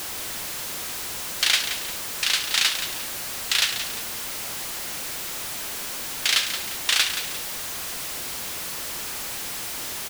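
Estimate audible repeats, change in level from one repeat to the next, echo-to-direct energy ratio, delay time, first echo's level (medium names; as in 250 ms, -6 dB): 2, -8.0 dB, -9.0 dB, 175 ms, -9.5 dB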